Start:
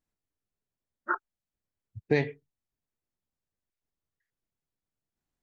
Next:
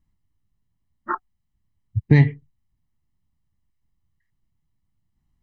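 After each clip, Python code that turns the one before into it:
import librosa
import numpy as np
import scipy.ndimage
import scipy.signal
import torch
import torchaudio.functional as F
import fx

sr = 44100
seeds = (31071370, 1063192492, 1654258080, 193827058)

y = fx.bass_treble(x, sr, bass_db=13, treble_db=-6)
y = fx.notch(y, sr, hz=740.0, q=21.0)
y = y + 0.64 * np.pad(y, (int(1.0 * sr / 1000.0), 0))[:len(y)]
y = y * librosa.db_to_amplitude(4.0)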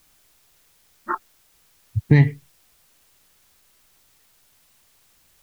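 y = fx.quant_dither(x, sr, seeds[0], bits=10, dither='triangular')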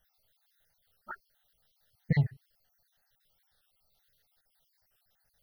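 y = fx.spec_dropout(x, sr, seeds[1], share_pct=54)
y = fx.fixed_phaser(y, sr, hz=1600.0, stages=8)
y = fx.record_warp(y, sr, rpm=45.0, depth_cents=160.0)
y = y * librosa.db_to_amplitude(-8.0)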